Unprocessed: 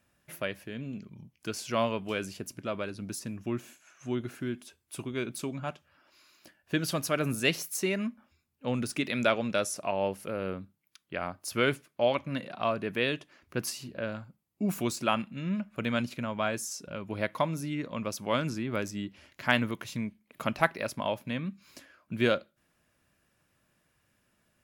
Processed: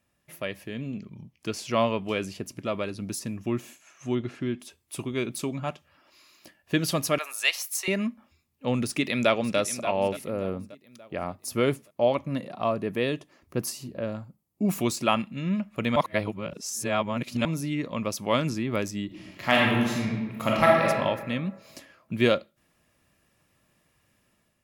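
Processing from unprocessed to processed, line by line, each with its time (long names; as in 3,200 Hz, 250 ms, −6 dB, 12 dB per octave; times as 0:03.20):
0:00.91–0:02.56: high-shelf EQ 6,800 Hz −7 dB
0:04.15–0:04.60: low-pass filter 4,900 Hz
0:07.18–0:07.88: high-pass filter 750 Hz 24 dB per octave
0:08.84–0:09.58: delay throw 580 ms, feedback 45%, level −12.5 dB
0:10.24–0:14.65: parametric band 2,700 Hz −7.5 dB 2.1 octaves
0:15.96–0:17.45: reverse
0:19.06–0:20.88: thrown reverb, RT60 1.4 s, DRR −4 dB
whole clip: notch filter 1,500 Hz, Q 7; automatic gain control gain up to 7 dB; level −2.5 dB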